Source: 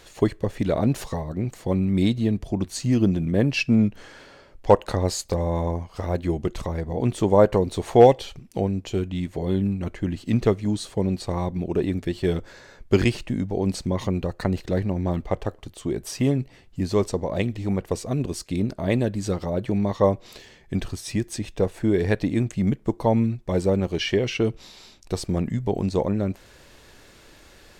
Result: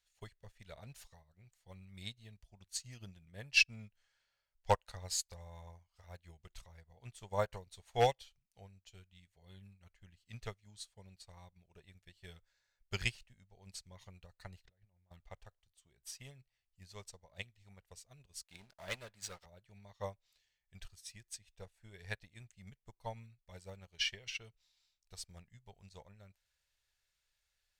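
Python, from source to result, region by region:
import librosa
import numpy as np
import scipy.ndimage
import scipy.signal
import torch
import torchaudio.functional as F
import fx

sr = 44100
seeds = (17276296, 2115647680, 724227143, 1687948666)

y = fx.chain(x, sr, fx.over_compress(threshold_db=-33.0, ratio=-1.0),
    fx.spacing_loss(db_at_10k=21), at=(14.65, 15.11))
y = fx.chain(y, sr, fx.highpass(hz=490.0, slope=6),
    fx.high_shelf(hz=2800.0, db=-8.5),
    fx.leveller(passes=3), at=(18.43, 19.46))
y = fx.tone_stack(y, sr, knobs='10-0-10')
y = fx.notch(y, sr, hz=1100.0, q=12.0)
y = fx.upward_expand(y, sr, threshold_db=-45.0, expansion=2.5)
y = y * 10.0 ** (2.0 / 20.0)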